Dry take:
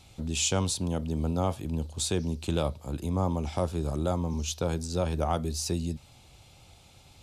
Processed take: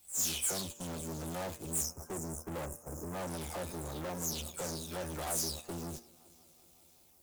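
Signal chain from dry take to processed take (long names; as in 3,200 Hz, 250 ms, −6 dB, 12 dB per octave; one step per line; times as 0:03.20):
every frequency bin delayed by itself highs early, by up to 269 ms
echo machine with several playback heads 187 ms, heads second and third, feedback 58%, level −20.5 dB
in parallel at −10 dB: bit-depth reduction 8 bits, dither triangular
on the sum: time-frequency box erased 0:01.84–0:03.14, 1,600–5,100 Hz
tube saturation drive 35 dB, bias 0.65
parametric band 4,900 Hz −5 dB 2.1 octaves
noise gate −41 dBFS, range −13 dB
bass and treble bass −6 dB, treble +12 dB
hum removal 116.1 Hz, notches 25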